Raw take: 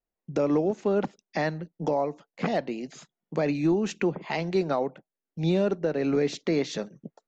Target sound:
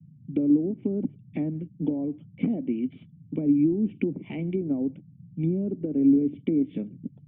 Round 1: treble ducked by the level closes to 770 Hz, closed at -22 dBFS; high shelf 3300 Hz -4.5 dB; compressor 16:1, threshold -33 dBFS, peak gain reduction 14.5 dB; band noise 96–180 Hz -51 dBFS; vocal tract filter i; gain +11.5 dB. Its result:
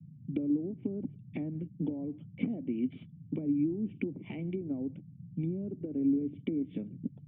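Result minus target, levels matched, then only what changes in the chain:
compressor: peak gain reduction +9.5 dB
change: compressor 16:1, threshold -23 dBFS, peak gain reduction 5 dB

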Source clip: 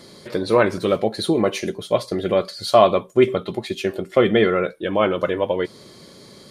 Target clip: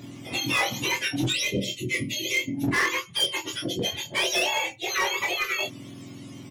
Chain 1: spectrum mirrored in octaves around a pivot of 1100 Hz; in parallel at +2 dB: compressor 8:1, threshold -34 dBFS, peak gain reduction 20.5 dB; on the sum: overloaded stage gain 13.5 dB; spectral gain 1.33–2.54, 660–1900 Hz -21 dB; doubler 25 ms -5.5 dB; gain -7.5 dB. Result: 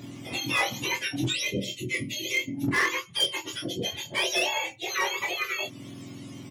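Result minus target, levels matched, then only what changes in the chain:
compressor: peak gain reduction +9.5 dB
change: compressor 8:1, threshold -23 dBFS, peak gain reduction 10.5 dB

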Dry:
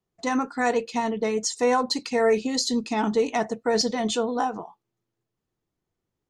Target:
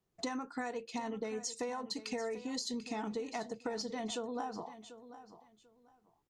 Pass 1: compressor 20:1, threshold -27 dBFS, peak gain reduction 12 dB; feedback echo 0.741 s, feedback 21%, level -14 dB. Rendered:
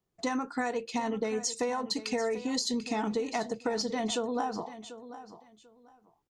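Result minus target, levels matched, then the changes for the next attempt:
compressor: peak gain reduction -7.5 dB
change: compressor 20:1, threshold -35 dBFS, peak gain reduction 19.5 dB

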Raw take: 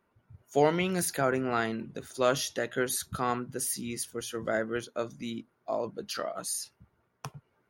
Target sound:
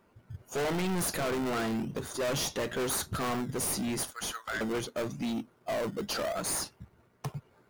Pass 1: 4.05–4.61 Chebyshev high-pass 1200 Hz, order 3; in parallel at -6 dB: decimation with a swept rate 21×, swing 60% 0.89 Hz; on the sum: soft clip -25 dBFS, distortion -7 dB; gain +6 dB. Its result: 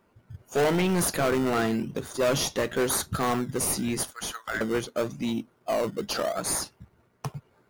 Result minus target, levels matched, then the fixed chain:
soft clip: distortion -5 dB
4.05–4.61 Chebyshev high-pass 1200 Hz, order 3; in parallel at -6 dB: decimation with a swept rate 21×, swing 60% 0.89 Hz; on the sum: soft clip -34.5 dBFS, distortion -2 dB; gain +6 dB

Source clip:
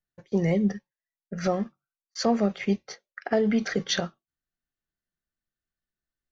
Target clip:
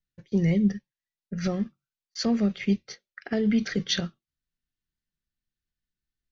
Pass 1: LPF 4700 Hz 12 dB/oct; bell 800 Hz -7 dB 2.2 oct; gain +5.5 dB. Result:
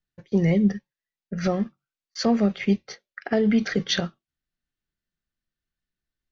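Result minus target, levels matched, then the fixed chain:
1000 Hz band +5.5 dB
LPF 4700 Hz 12 dB/oct; bell 800 Hz -16.5 dB 2.2 oct; gain +5.5 dB

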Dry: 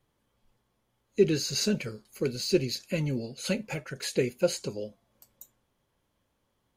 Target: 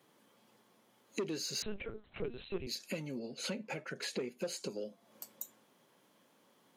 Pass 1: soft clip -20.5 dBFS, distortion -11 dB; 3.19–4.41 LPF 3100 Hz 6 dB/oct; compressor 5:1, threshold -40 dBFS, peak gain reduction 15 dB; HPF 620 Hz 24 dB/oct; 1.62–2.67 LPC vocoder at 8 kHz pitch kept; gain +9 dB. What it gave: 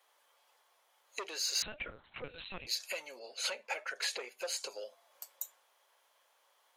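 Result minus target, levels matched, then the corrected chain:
250 Hz band -18.5 dB; compressor: peak gain reduction -5.5 dB
soft clip -20.5 dBFS, distortion -11 dB; 3.19–4.41 LPF 3100 Hz 6 dB/oct; compressor 5:1, threshold -47 dBFS, peak gain reduction 20.5 dB; HPF 180 Hz 24 dB/oct; 1.62–2.67 LPC vocoder at 8 kHz pitch kept; gain +9 dB

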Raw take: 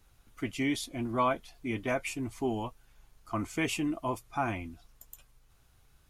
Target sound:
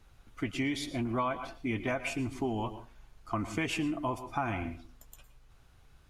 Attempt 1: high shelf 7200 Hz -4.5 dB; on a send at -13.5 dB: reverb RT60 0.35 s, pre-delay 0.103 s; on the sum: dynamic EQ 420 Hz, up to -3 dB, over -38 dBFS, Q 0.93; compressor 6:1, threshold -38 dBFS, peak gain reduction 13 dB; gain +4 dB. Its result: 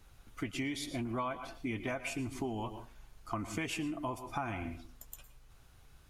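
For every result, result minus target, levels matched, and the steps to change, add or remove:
compressor: peak gain reduction +5 dB; 8000 Hz band +4.0 dB
change: compressor 6:1, threshold -32 dBFS, peak gain reduction 8 dB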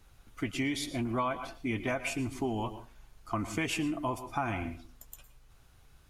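8000 Hz band +3.5 dB
change: high shelf 7200 Hz -12.5 dB

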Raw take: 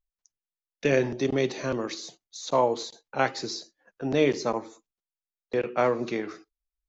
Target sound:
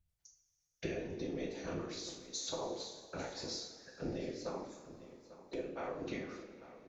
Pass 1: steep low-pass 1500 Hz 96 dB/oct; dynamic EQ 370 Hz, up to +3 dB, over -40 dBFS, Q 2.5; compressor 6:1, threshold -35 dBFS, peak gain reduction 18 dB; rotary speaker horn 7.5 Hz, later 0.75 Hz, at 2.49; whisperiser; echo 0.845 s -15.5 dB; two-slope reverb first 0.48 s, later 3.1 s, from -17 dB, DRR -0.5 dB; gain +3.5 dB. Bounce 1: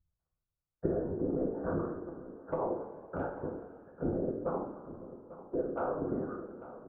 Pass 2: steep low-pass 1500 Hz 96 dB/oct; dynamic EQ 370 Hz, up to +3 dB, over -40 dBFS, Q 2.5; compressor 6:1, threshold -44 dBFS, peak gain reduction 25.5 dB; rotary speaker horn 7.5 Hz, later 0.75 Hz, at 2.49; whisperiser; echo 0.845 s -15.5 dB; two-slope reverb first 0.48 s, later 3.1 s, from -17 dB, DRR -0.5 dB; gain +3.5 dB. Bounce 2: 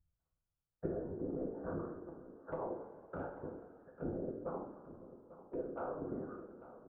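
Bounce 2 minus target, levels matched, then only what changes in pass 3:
2000 Hz band -7.0 dB
remove: steep low-pass 1500 Hz 96 dB/oct

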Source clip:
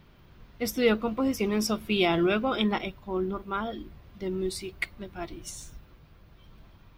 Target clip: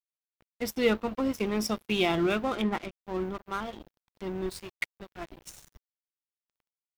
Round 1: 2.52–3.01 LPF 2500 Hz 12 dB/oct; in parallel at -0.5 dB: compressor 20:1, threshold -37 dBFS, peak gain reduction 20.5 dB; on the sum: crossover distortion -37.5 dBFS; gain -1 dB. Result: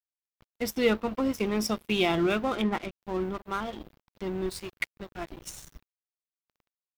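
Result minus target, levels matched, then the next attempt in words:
compressor: peak gain reduction -9.5 dB
2.52–3.01 LPF 2500 Hz 12 dB/oct; in parallel at -0.5 dB: compressor 20:1, threshold -47 dBFS, peak gain reduction 30 dB; on the sum: crossover distortion -37.5 dBFS; gain -1 dB

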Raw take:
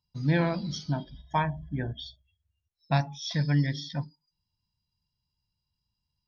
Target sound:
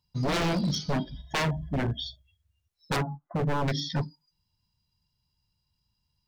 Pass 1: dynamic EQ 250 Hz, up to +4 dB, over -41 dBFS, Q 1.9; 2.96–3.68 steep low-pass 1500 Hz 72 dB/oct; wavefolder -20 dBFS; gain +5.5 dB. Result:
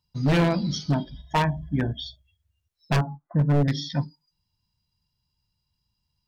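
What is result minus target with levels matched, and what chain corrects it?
wavefolder: distortion -13 dB
dynamic EQ 250 Hz, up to +4 dB, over -41 dBFS, Q 1.9; 2.96–3.68 steep low-pass 1500 Hz 72 dB/oct; wavefolder -27 dBFS; gain +5.5 dB

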